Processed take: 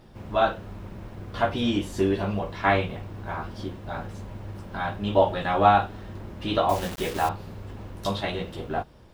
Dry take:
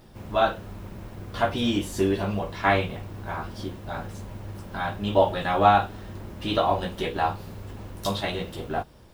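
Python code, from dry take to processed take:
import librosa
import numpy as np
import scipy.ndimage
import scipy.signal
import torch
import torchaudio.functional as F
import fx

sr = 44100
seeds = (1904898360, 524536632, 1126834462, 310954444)

y = fx.high_shelf(x, sr, hz=6900.0, db=-10.0)
y = fx.quant_dither(y, sr, seeds[0], bits=6, dither='none', at=(6.69, 7.29))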